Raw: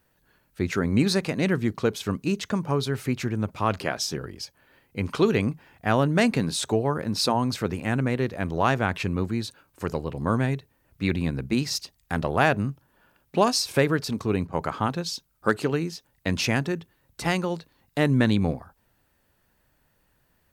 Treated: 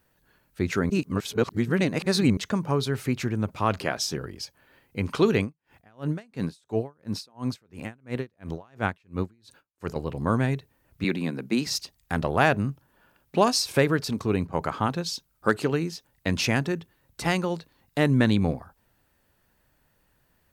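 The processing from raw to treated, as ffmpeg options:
-filter_complex "[0:a]asettb=1/sr,asplit=3[a][b][c];[a]atrim=end=5.414[d];[b]atrim=start=5.41:end=9.96,asetpts=PTS-STARTPTS,afade=t=in:d=0.004:c=qsin,afade=t=out:st=4.546:d=0.004:c=qsin,aeval=exprs='val(0)*pow(10,-38*(0.5-0.5*cos(2*PI*2.9*n/s))/20)':c=same[e];[c]atrim=start=9.956[f];[d][e]acrossfade=d=0.004:c1=hsin:c2=qsin[g];[g][f]acrossfade=d=0.004:c1=qsin:c2=hsin,asettb=1/sr,asplit=3[h][i][j];[h]atrim=end=11.044[k];[i]atrim=start=11.04:end=11.67,asetpts=PTS-STARTPTS,afade=t=in:d=0.004:c=qsin,afade=t=out:st=0.626:d=0.004:c=qsin,highpass=f=170:w=0.5412,highpass=f=170:w=1.3066[l];[j]atrim=start=11.666[m];[k][l]acrossfade=d=0.004:c1=hsin:c2=qsin[n];[n][m]acrossfade=d=0.004:c1=qsin:c2=hsin,asplit=3[o][p][q];[o]atrim=end=0.902[r];[p]atrim=start=0.898:end=2.372,asetpts=PTS-STARTPTS,areverse[s];[q]atrim=start=2.368[t];[r][s]acrossfade=d=0.004:c1=hsin:c2=hsin[u];[u][t]acrossfade=d=0.004:c1=hsin:c2=hsin"

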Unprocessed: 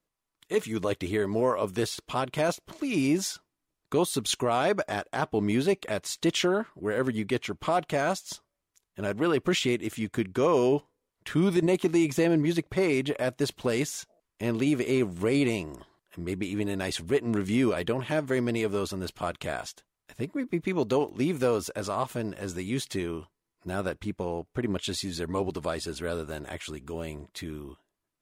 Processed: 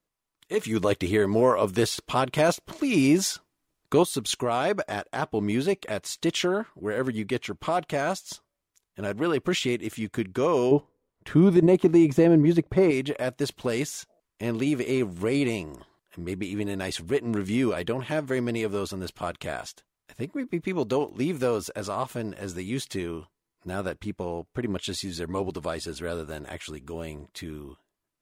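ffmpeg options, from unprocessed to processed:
-filter_complex "[0:a]asettb=1/sr,asplit=3[a][b][c];[a]atrim=end=0.644[d];[b]atrim=start=0.64:end=4.03,asetpts=PTS-STARTPTS,afade=t=in:d=0.004:c=qsin,afade=t=out:st=3.386:d=0.004:c=qsin,acontrast=23[e];[c]atrim=start=4.026[f];[d][e]acrossfade=d=0.004:c1=hsin:c2=qsin[g];[g][f]acrossfade=d=0.004:c1=qsin:c2=hsin,asettb=1/sr,asplit=3[h][i][j];[h]atrim=end=10.714[k];[i]atrim=start=10.71:end=12.91,asetpts=PTS-STARTPTS,afade=t=in:d=0.004:c=qsin,afade=t=out:st=2.196:d=0.004:c=qsin,tiltshelf=f=1.4k:g=6.5[l];[j]atrim=start=12.906[m];[k][l]acrossfade=d=0.004:c1=hsin:c2=qsin[n];[n][m]acrossfade=d=0.004:c1=qsin:c2=hsin"

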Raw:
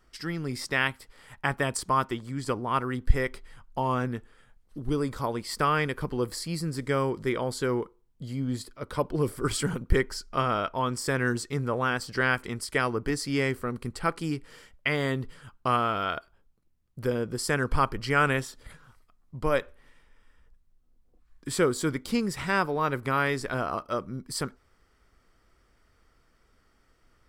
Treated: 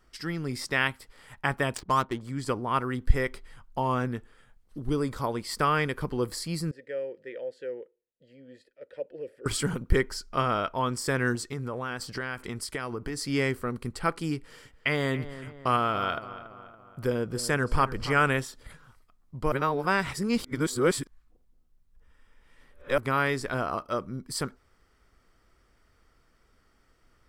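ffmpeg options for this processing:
-filter_complex "[0:a]asettb=1/sr,asplit=3[a][b][c];[a]atrim=end=1.754[d];[b]atrim=start=1.75:end=2.21,asetpts=PTS-STARTPTS,afade=t=in:d=0.004:c=qsin,afade=t=out:st=0.456:d=0.004:c=qsin,adynamicsmooth=sensitivity=7.5:basefreq=710[e];[c]atrim=start=2.206[f];[d][e]acrossfade=d=0.004:c1=hsin:c2=qsin[g];[g][f]acrossfade=d=0.004:c1=qsin:c2=hsin,asettb=1/sr,asplit=3[h][i][j];[h]atrim=end=6.714[k];[i]atrim=start=6.71:end=9.46,asetpts=PTS-STARTPTS,afade=t=in:d=0.004:c=qsin,afade=t=out:st=2.746:d=0.004:c=qsin,asplit=3[l][m][n];[l]bandpass=f=530:t=q:w=8,volume=0dB[o];[m]bandpass=f=1.84k:t=q:w=8,volume=-6dB[p];[n]bandpass=f=2.48k:t=q:w=8,volume=-9dB[q];[o][p][q]amix=inputs=3:normalize=0[r];[j]atrim=start=9.456[s];[k][r]acrossfade=d=0.004:c1=hsin:c2=qsin[t];[t][s]acrossfade=d=0.004:c1=qsin:c2=hsin,asettb=1/sr,asplit=3[u][v][w];[u]atrim=end=11.354[x];[v]atrim=start=11.35:end=13.21,asetpts=PTS-STARTPTS,afade=t=in:d=0.004:c=qsin,afade=t=out:st=1.856:d=0.004:c=qsin,acompressor=threshold=-29dB:ratio=5:attack=3.2:release=140:knee=1:detection=peak[y];[w]atrim=start=13.206[z];[x][y]acrossfade=d=0.004:c1=hsin:c2=qsin[aa];[aa][z]acrossfade=d=0.004:c1=qsin:c2=hsin,asettb=1/sr,asplit=3[ab][ac][ad];[ab]atrim=end=14.374[ae];[ac]atrim=start=14.37:end=18.21,asetpts=PTS-STARTPTS,afade=t=in:d=0.004:c=qsin,afade=t=out:st=3.836:d=0.004:c=qsin,asplit=2[af][ag];[ag]adelay=282,lowpass=f=2.6k:p=1,volume=-13.5dB,asplit=2[ah][ai];[ai]adelay=282,lowpass=f=2.6k:p=1,volume=0.52,asplit=2[aj][ak];[ak]adelay=282,lowpass=f=2.6k:p=1,volume=0.52,asplit=2[al][am];[am]adelay=282,lowpass=f=2.6k:p=1,volume=0.52,asplit=2[an][ao];[ao]adelay=282,lowpass=f=2.6k:p=1,volume=0.52[ap];[af][ah][aj][al][an][ap]amix=inputs=6:normalize=0,atrim=end_sample=169344[aq];[ad]atrim=start=18.206[ar];[ae][aq]acrossfade=d=0.004:c1=hsin:c2=qsin[as];[as][ar]acrossfade=d=0.004:c1=qsin:c2=hsin,asplit=3[at][au][av];[at]atrim=end=19.522[aw];[au]atrim=start=19.518:end=22.982,asetpts=PTS-STARTPTS,areverse[ax];[av]atrim=start=22.978[ay];[aw][ax]acrossfade=d=0.004:c1=hsin:c2=hsin[az];[az][ay]acrossfade=d=0.004:c1=hsin:c2=hsin"

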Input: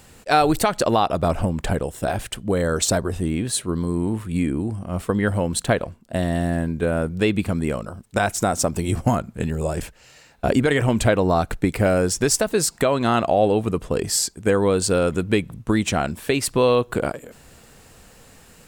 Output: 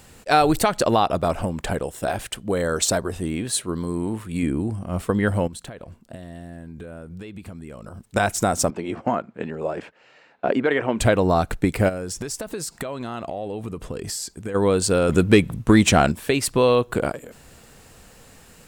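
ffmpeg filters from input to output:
-filter_complex "[0:a]asettb=1/sr,asplit=3[a][b][c];[a]atrim=end=1.184[d];[b]atrim=start=1.18:end=4.43,asetpts=PTS-STARTPTS,afade=t=in:d=0.004:c=qsin,afade=t=out:st=3.246:d=0.004:c=qsin,lowshelf=f=220:g=-6.5[e];[c]atrim=start=4.426[f];[d][e]acrossfade=d=0.004:c1=hsin:c2=qsin[g];[g][f]acrossfade=d=0.004:c1=qsin:c2=hsin,asettb=1/sr,asplit=3[h][i][j];[h]atrim=end=5.474[k];[i]atrim=start=5.47:end=8.05,asetpts=PTS-STARTPTS,afade=t=in:d=0.004:c=qsin,afade=t=out:st=2.576:d=0.004:c=qsin,acompressor=threshold=-33dB:ratio=12:attack=3.2:release=140:knee=1:detection=peak[l];[j]atrim=start=8.046[m];[k][l]acrossfade=d=0.004:c1=hsin:c2=qsin[n];[n][m]acrossfade=d=0.004:c1=qsin:c2=hsin,asettb=1/sr,asplit=3[o][p][q];[o]atrim=end=8.704[r];[p]atrim=start=8.7:end=11,asetpts=PTS-STARTPTS,afade=t=in:d=0.004:c=qsin,afade=t=out:st=2.296:d=0.004:c=qsin,highpass=280,lowpass=2.5k[s];[q]atrim=start=10.996[t];[r][s]acrossfade=d=0.004:c1=hsin:c2=qsin[u];[u][t]acrossfade=d=0.004:c1=qsin:c2=hsin,asplit=3[v][w][x];[v]afade=t=out:st=11.88:d=0.02[y];[w]acompressor=threshold=-26dB:ratio=8:attack=3.2:release=140:knee=1:detection=peak,afade=t=in:st=11.88:d=0.02,afade=t=out:st=14.54:d=0.02[z];[x]afade=t=in:st=14.54:d=0.02[aa];[y][z][aa]amix=inputs=3:normalize=0,asettb=1/sr,asplit=3[ab][ac][ad];[ab]atrim=end=15.094[ae];[ac]atrim=start=15.09:end=16.12,asetpts=PTS-STARTPTS,afade=t=in:d=0.004:c=qsin,afade=t=out:st=1.026:d=0.004:c=qsin,acontrast=65[af];[ad]atrim=start=16.116[ag];[ae][af]acrossfade=d=0.004:c1=hsin:c2=qsin[ah];[ah][ag]acrossfade=d=0.004:c1=qsin:c2=hsin"

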